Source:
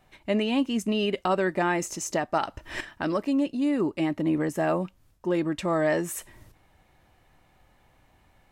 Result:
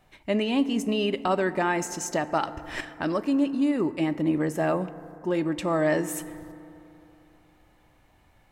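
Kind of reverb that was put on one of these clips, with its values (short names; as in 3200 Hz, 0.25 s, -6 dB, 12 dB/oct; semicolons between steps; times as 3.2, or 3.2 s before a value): FDN reverb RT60 3.1 s, high-frequency decay 0.3×, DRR 13 dB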